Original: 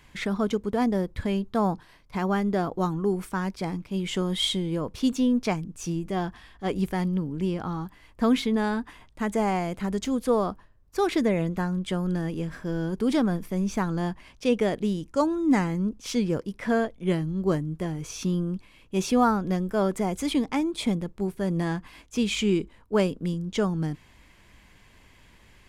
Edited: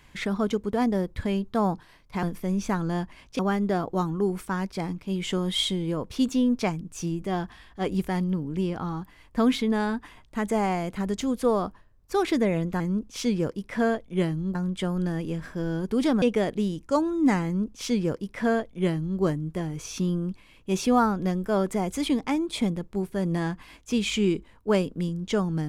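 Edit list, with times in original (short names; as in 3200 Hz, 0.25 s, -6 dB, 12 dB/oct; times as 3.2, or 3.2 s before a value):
13.31–14.47 move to 2.23
15.7–17.45 copy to 11.64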